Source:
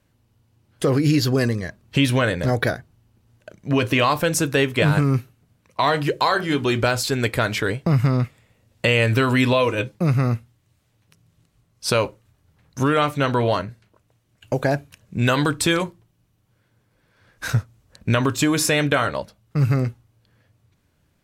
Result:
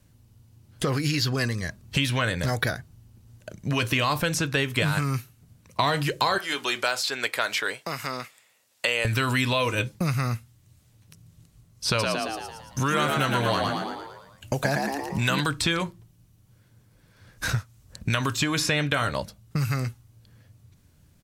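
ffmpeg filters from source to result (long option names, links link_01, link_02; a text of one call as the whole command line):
ffmpeg -i in.wav -filter_complex "[0:a]asettb=1/sr,asplit=3[link_01][link_02][link_03];[link_01]atrim=end=6.384[link_04];[link_02]atrim=start=6.38:end=9.05,asetpts=PTS-STARTPTS,afade=type=in:duration=0.004:curve=qsin,afade=type=out:start_time=2.666:duration=0.004:curve=qsin,highpass=820[link_05];[link_03]atrim=start=9.046[link_06];[link_04][link_05]acrossfade=duration=0.004:curve1=hsin:curve2=qsin[link_07];[link_07][link_06]acrossfade=duration=0.004:curve1=qsin:curve2=hsin,asplit=3[link_08][link_09][link_10];[link_08]afade=type=out:start_time=11.98:duration=0.02[link_11];[link_09]asplit=8[link_12][link_13][link_14][link_15][link_16][link_17][link_18][link_19];[link_13]adelay=113,afreqshift=69,volume=-4dB[link_20];[link_14]adelay=226,afreqshift=138,volume=-9.5dB[link_21];[link_15]adelay=339,afreqshift=207,volume=-15dB[link_22];[link_16]adelay=452,afreqshift=276,volume=-20.5dB[link_23];[link_17]adelay=565,afreqshift=345,volume=-26.1dB[link_24];[link_18]adelay=678,afreqshift=414,volume=-31.6dB[link_25];[link_19]adelay=791,afreqshift=483,volume=-37.1dB[link_26];[link_12][link_20][link_21][link_22][link_23][link_24][link_25][link_26]amix=inputs=8:normalize=0,afade=type=in:start_time=11.98:duration=0.02,afade=type=out:start_time=15.39:duration=0.02[link_27];[link_10]afade=type=in:start_time=15.39:duration=0.02[link_28];[link_11][link_27][link_28]amix=inputs=3:normalize=0,bass=frequency=250:gain=8,treble=frequency=4000:gain=8,acrossover=split=800|4500[link_29][link_30][link_31];[link_29]acompressor=threshold=-27dB:ratio=4[link_32];[link_30]acompressor=threshold=-23dB:ratio=4[link_33];[link_31]acompressor=threshold=-39dB:ratio=4[link_34];[link_32][link_33][link_34]amix=inputs=3:normalize=0" out.wav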